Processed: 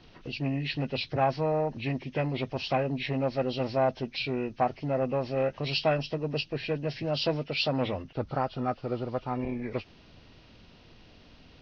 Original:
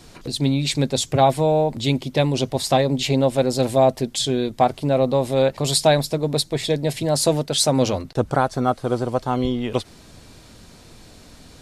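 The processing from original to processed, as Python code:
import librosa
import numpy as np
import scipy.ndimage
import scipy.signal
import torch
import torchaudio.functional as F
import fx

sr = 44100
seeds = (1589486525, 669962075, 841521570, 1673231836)

y = fx.freq_compress(x, sr, knee_hz=1200.0, ratio=1.5)
y = fx.transformer_sat(y, sr, knee_hz=510.0)
y = F.gain(torch.from_numpy(y), -8.5).numpy()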